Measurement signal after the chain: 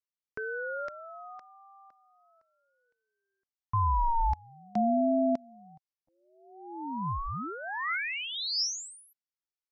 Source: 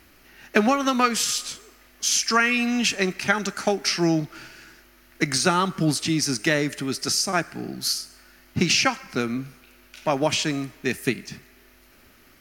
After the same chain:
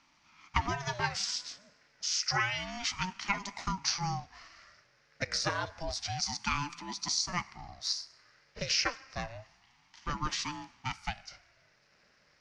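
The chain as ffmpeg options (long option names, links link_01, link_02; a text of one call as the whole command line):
ffmpeg -i in.wav -af "highpass=frequency=300:width=0.5412,highpass=frequency=300:width=1.3066,equalizer=frequency=450:width_type=q:width=4:gain=4,equalizer=frequency=1000:width_type=q:width=4:gain=-7,equalizer=frequency=1700:width_type=q:width=4:gain=5,equalizer=frequency=3100:width_type=q:width=4:gain=-4,equalizer=frequency=5200:width_type=q:width=4:gain=8,lowpass=frequency=6100:width=0.5412,lowpass=frequency=6100:width=1.3066,aeval=exprs='val(0)*sin(2*PI*400*n/s+400*0.5/0.29*sin(2*PI*0.29*n/s))':channel_layout=same,volume=-8.5dB" out.wav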